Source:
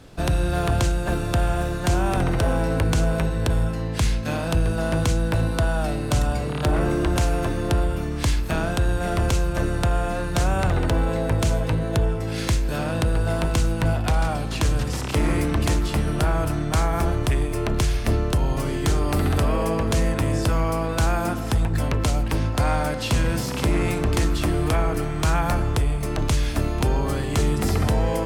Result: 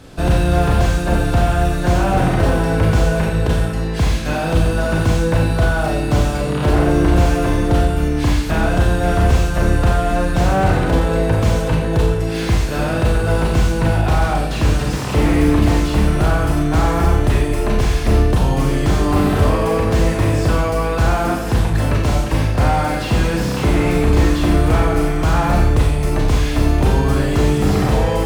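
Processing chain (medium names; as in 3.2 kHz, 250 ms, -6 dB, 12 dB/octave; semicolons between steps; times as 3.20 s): Schroeder reverb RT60 0.62 s, combs from 30 ms, DRR 1 dB; slew-rate limiter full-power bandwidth 89 Hz; trim +5 dB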